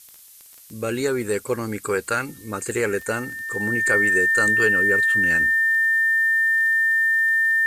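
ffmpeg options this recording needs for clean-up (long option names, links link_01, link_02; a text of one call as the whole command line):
ffmpeg -i in.wav -af "adeclick=threshold=4,bandreject=frequency=1800:width=30,afftdn=noise_reduction=22:noise_floor=-46" out.wav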